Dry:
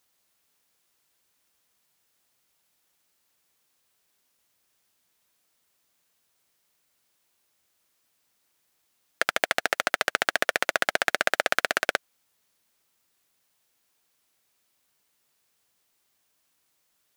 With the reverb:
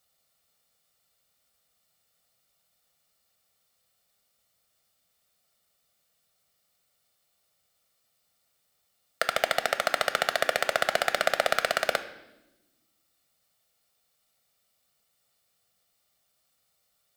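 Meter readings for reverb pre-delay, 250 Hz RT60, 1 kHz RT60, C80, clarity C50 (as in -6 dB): 6 ms, 1.7 s, 0.85 s, 15.0 dB, 13.0 dB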